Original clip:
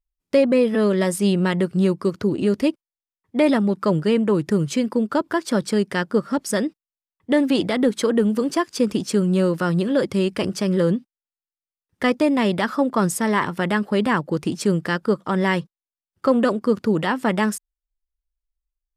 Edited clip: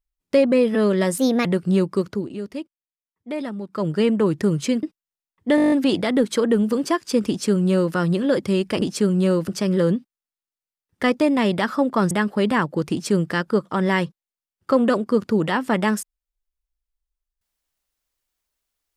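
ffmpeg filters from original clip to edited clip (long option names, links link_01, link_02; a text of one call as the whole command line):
ffmpeg -i in.wav -filter_complex "[0:a]asplit=17[link_01][link_02][link_03][link_04][link_05][link_06][link_07][link_08][link_09][link_10][link_11][link_12][link_13][link_14][link_15][link_16][link_17];[link_01]atrim=end=1.184[link_18];[link_02]atrim=start=1.18:end=1.53,asetpts=PTS-STARTPTS,asetrate=57330,aresample=44100,atrim=end_sample=11873,asetpts=PTS-STARTPTS[link_19];[link_03]atrim=start=1.526:end=2.4,asetpts=PTS-STARTPTS,afade=type=out:start_time=0.554:duration=0.32:silence=0.281838[link_20];[link_04]atrim=start=2.4:end=3.77,asetpts=PTS-STARTPTS,volume=-11dB[link_21];[link_05]atrim=start=3.77:end=4.912,asetpts=PTS-STARTPTS,afade=type=in:duration=0.32:silence=0.281838[link_22];[link_06]atrim=start=6.648:end=7.402[link_23];[link_07]atrim=start=7.378:end=7.402[link_24];[link_08]atrim=start=7.378:end=7.402[link_25];[link_09]atrim=start=7.378:end=7.402[link_26];[link_10]atrim=start=7.378:end=7.402[link_27];[link_11]atrim=start=7.378:end=7.402[link_28];[link_12]atrim=start=7.378:end=7.402[link_29];[link_13]atrim=start=7.378:end=7.402[link_30];[link_14]atrim=start=7.378:end=10.482[link_31];[link_15]atrim=start=8.948:end=9.612[link_32];[link_16]atrim=start=10.478:end=13.112[link_33];[link_17]atrim=start=13.658[link_34];[link_18][link_19]acrossfade=duration=0.004:curve1=hsin:curve2=hsin[link_35];[link_20][link_21][link_22]concat=n=3:v=0:a=1[link_36];[link_35][link_36]acrossfade=duration=0.004:curve1=hsin:curve2=hsin[link_37];[link_37][link_23]acrossfade=duration=0.004:curve1=hsin:curve2=hsin[link_38];[link_38][link_24]acrossfade=duration=0.004:curve1=hsin:curve2=hsin[link_39];[link_39][link_25]acrossfade=duration=0.004:curve1=hsin:curve2=hsin[link_40];[link_40][link_26]acrossfade=duration=0.004:curve1=hsin:curve2=hsin[link_41];[link_41][link_27]acrossfade=duration=0.004:curve1=hsin:curve2=hsin[link_42];[link_42][link_28]acrossfade=duration=0.004:curve1=hsin:curve2=hsin[link_43];[link_43][link_29]acrossfade=duration=0.004:curve1=hsin:curve2=hsin[link_44];[link_44][link_30]acrossfade=duration=0.004:curve1=hsin:curve2=hsin[link_45];[link_45][link_31]acrossfade=duration=0.004:curve1=hsin:curve2=hsin[link_46];[link_46][link_32]acrossfade=duration=0.004:curve1=hsin:curve2=hsin[link_47];[link_47][link_33]acrossfade=duration=0.004:curve1=hsin:curve2=hsin[link_48];[link_48][link_34]acrossfade=duration=0.004:curve1=hsin:curve2=hsin" out.wav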